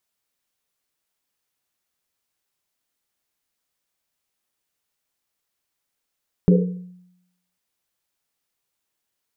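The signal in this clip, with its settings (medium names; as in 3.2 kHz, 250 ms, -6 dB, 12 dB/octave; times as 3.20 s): Risset drum, pitch 180 Hz, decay 0.84 s, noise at 460 Hz, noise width 100 Hz, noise 35%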